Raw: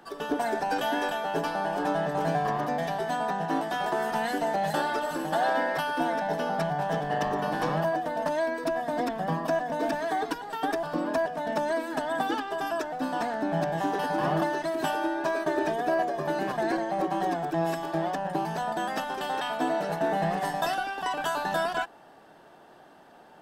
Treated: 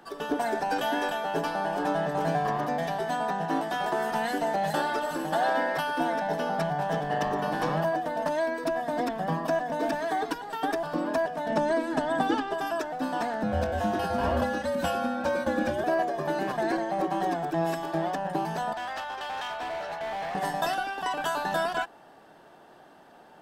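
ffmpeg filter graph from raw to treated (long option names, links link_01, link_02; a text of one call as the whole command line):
ffmpeg -i in.wav -filter_complex "[0:a]asettb=1/sr,asplit=3[link_01][link_02][link_03];[link_01]atrim=end=11.504[link_04];[link_02]atrim=start=11.5:end=12.54,asetpts=PTS-STARTPTS,afade=type=in:duration=0.004:curve=qsin,afade=type=out:start_time=1.036:duration=0.004:curve=qsin,lowpass=9800,lowshelf=frequency=400:gain=7.5[link_05];[link_03]atrim=start=12.536[link_06];[link_04][link_05]acrossfade=duration=0.004:curve1=hsin:curve2=qsin[link_07];[link_07][link_06]acrossfade=duration=0.004:curve1=qsin:curve2=hsin,asettb=1/sr,asplit=3[link_08][link_09][link_10];[link_08]atrim=end=13.434[link_11];[link_09]atrim=start=13.43:end=15.84,asetpts=PTS-STARTPTS,afade=type=in:duration=0.004:curve=qsin,afade=type=out:start_time=2.406:duration=0.004:curve=qsin,afreqshift=-83,asplit=2[link_12][link_13];[link_13]adelay=23,volume=-12dB[link_14];[link_12][link_14]amix=inputs=2:normalize=0,atrim=end_sample=106281[link_15];[link_10]atrim=start=15.836[link_16];[link_11][link_15]acrossfade=duration=0.004:curve1=hsin:curve2=qsin[link_17];[link_17][link_16]acrossfade=duration=0.004:curve1=qsin:curve2=hsin,asettb=1/sr,asplit=3[link_18][link_19][link_20];[link_18]atrim=end=18.734[link_21];[link_19]atrim=start=18.73:end=20.35,asetpts=PTS-STARTPTS,afade=type=in:duration=0.004:curve=qsin,afade=type=out:start_time=1.616:duration=0.004:curve=qsin,acrossover=split=570 5600:gain=0.126 1 0.2[link_22][link_23][link_24];[link_22][link_23][link_24]amix=inputs=3:normalize=0,aeval=exprs='val(0)+0.000631*(sin(2*PI*50*n/s)+sin(2*PI*2*50*n/s)/2+sin(2*PI*3*50*n/s)/3+sin(2*PI*4*50*n/s)/4+sin(2*PI*5*50*n/s)/5)':channel_layout=same,asoftclip=type=hard:threshold=-30.5dB[link_25];[link_20]atrim=start=20.346[link_26];[link_21][link_25]acrossfade=duration=0.004:curve1=hsin:curve2=qsin[link_27];[link_27][link_26]acrossfade=duration=0.004:curve1=qsin:curve2=hsin" out.wav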